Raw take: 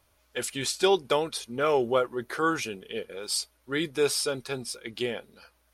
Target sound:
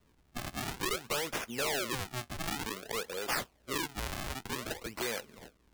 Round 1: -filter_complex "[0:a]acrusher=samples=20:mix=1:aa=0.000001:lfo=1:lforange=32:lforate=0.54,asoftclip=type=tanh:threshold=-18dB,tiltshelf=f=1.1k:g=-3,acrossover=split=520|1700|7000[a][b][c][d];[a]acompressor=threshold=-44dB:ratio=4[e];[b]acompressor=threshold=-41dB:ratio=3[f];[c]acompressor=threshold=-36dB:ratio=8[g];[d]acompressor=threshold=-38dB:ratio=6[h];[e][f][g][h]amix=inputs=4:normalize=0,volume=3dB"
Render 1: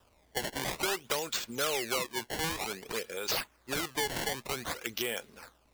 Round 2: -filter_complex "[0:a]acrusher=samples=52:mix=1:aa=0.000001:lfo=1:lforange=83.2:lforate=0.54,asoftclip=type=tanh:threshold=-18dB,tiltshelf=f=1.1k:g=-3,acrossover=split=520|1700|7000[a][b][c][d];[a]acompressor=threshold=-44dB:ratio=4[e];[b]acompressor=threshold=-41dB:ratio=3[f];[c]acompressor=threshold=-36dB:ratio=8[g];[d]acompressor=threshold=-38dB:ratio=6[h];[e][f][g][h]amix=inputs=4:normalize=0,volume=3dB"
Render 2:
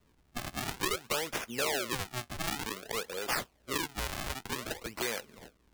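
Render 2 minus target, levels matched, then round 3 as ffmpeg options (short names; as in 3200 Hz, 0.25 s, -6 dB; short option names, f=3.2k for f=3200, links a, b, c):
soft clip: distortion -8 dB
-filter_complex "[0:a]acrusher=samples=52:mix=1:aa=0.000001:lfo=1:lforange=83.2:lforate=0.54,asoftclip=type=tanh:threshold=-26.5dB,tiltshelf=f=1.1k:g=-3,acrossover=split=520|1700|7000[a][b][c][d];[a]acompressor=threshold=-44dB:ratio=4[e];[b]acompressor=threshold=-41dB:ratio=3[f];[c]acompressor=threshold=-36dB:ratio=8[g];[d]acompressor=threshold=-38dB:ratio=6[h];[e][f][g][h]amix=inputs=4:normalize=0,volume=3dB"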